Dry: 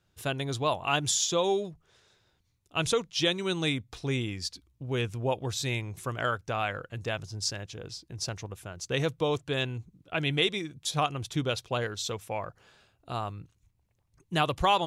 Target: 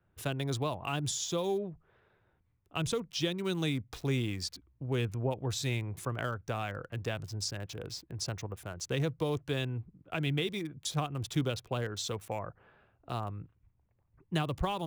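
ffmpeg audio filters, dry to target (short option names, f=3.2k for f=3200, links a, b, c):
-filter_complex "[0:a]acrossover=split=320[a][b];[b]acompressor=threshold=-34dB:ratio=4[c];[a][c]amix=inputs=2:normalize=0,acrossover=split=690|2300[d][e][f];[f]aeval=exprs='val(0)*gte(abs(val(0)),0.00376)':c=same[g];[d][e][g]amix=inputs=3:normalize=0"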